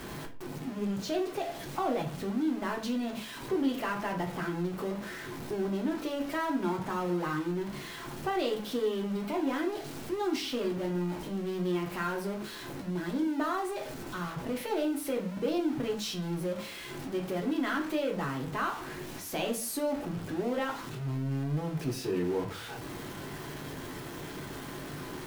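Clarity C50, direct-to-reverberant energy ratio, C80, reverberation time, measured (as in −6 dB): 11.5 dB, 0.5 dB, 15.5 dB, 0.45 s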